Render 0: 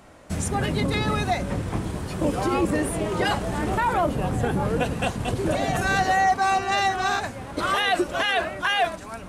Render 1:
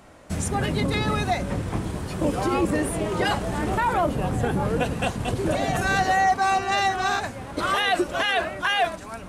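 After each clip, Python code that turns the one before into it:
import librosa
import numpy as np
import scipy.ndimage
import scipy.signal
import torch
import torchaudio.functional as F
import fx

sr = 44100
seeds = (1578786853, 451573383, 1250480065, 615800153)

y = x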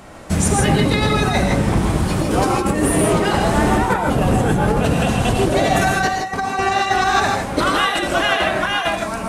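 y = fx.over_compress(x, sr, threshold_db=-25.0, ratio=-0.5)
y = fx.rev_gated(y, sr, seeds[0], gate_ms=180, shape='rising', drr_db=1.5)
y = F.gain(torch.from_numpy(y), 7.0).numpy()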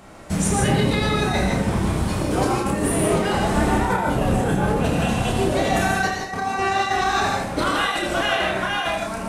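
y = fx.room_early_taps(x, sr, ms=(31, 79), db=(-4.5, -9.5))
y = F.gain(torch.from_numpy(y), -5.5).numpy()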